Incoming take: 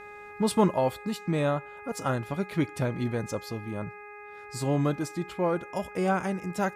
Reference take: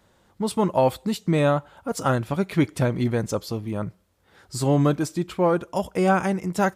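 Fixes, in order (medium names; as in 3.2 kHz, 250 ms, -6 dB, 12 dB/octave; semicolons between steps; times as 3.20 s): de-hum 414.1 Hz, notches 6; trim 0 dB, from 0.74 s +6.5 dB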